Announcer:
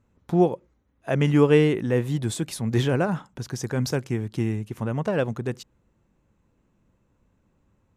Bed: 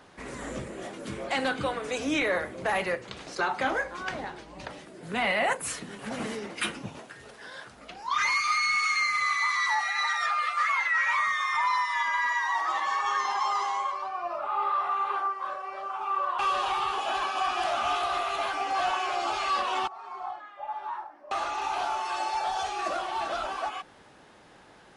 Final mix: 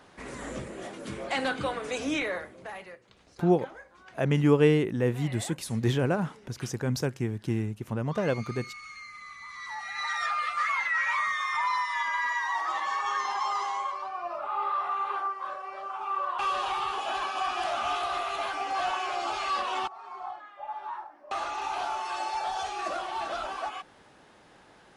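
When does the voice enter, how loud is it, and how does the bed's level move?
3.10 s, −3.5 dB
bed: 0:02.09 −1 dB
0:02.99 −18.5 dB
0:09.42 −18.5 dB
0:10.17 −2 dB

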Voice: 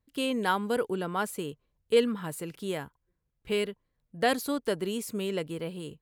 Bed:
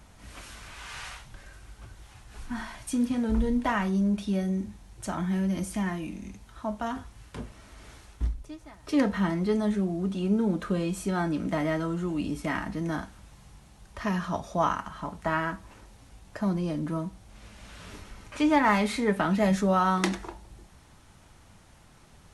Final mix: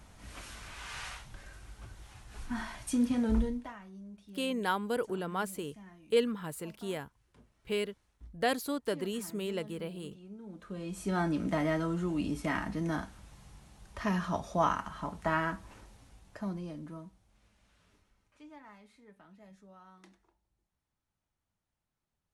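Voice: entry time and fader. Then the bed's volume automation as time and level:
4.20 s, −4.0 dB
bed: 0:03.38 −2 dB
0:03.79 −23 dB
0:10.40 −23 dB
0:11.15 −2.5 dB
0:15.78 −2.5 dB
0:18.78 −32.5 dB

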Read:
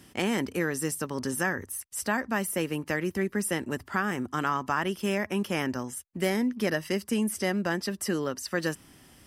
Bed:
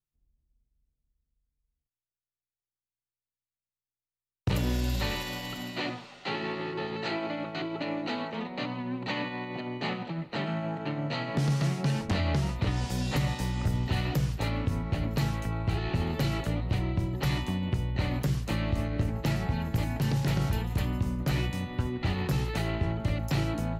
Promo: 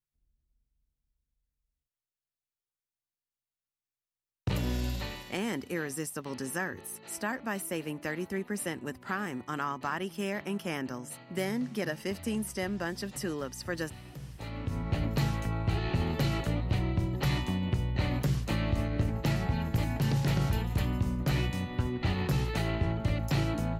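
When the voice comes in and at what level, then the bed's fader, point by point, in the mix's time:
5.15 s, −5.5 dB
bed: 0:04.86 −3 dB
0:05.58 −18.5 dB
0:14.11 −18.5 dB
0:14.88 −0.5 dB

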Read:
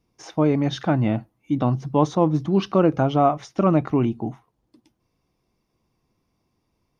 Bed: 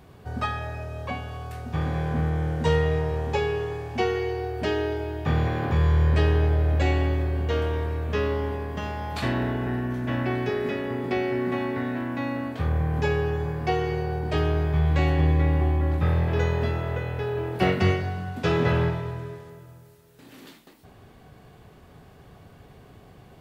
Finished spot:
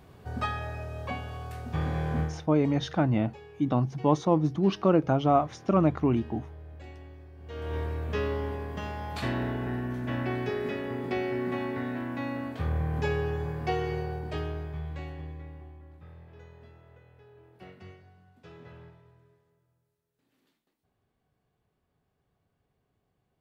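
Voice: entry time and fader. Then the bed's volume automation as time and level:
2.10 s, −4.5 dB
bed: 0:02.22 −3 dB
0:02.48 −23.5 dB
0:07.36 −23.5 dB
0:07.76 −4.5 dB
0:13.98 −4.5 dB
0:15.87 −27 dB

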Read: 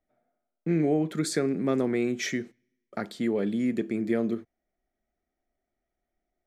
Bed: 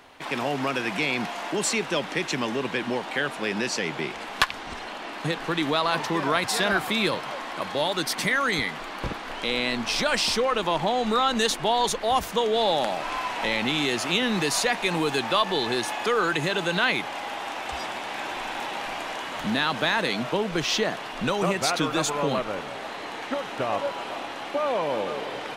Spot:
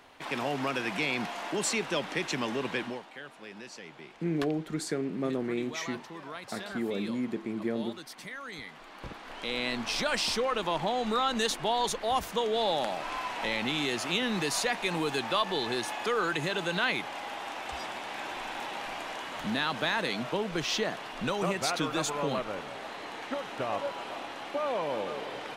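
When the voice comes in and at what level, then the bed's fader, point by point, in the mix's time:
3.55 s, −5.5 dB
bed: 0:02.80 −4.5 dB
0:03.11 −18 dB
0:08.44 −18 dB
0:09.66 −5.5 dB

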